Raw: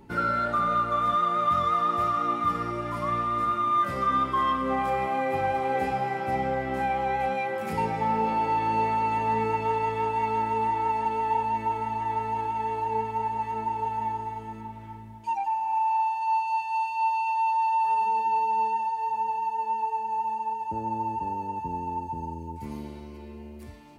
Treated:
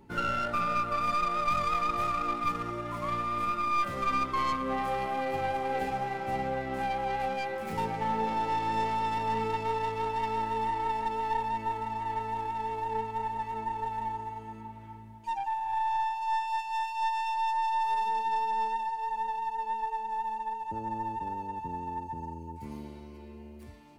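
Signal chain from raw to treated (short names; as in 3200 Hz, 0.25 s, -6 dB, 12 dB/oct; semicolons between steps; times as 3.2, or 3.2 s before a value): tracing distortion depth 0.11 ms; gain -4.5 dB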